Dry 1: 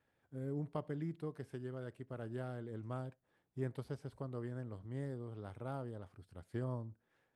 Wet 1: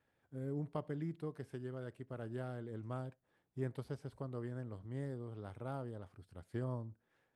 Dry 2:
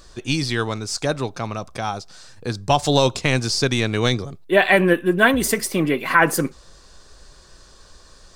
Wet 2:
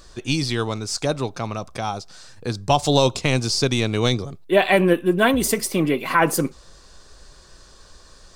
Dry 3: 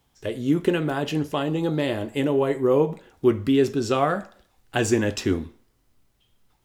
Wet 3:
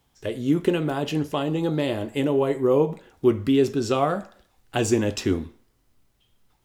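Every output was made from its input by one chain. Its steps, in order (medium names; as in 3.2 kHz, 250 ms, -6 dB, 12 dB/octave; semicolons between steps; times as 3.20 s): dynamic bell 1.7 kHz, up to -7 dB, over -39 dBFS, Q 2.5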